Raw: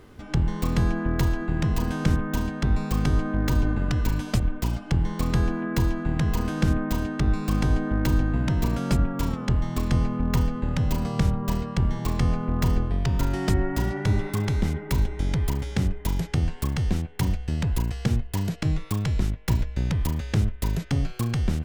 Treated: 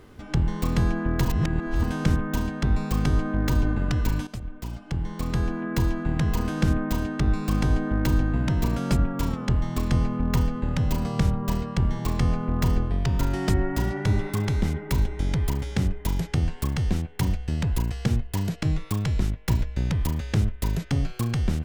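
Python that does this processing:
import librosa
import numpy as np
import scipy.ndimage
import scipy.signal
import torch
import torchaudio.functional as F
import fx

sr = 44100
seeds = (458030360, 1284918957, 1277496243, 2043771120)

y = fx.edit(x, sr, fx.reverse_span(start_s=1.25, length_s=0.58),
    fx.fade_in_from(start_s=4.27, length_s=1.67, floor_db=-13.5), tone=tone)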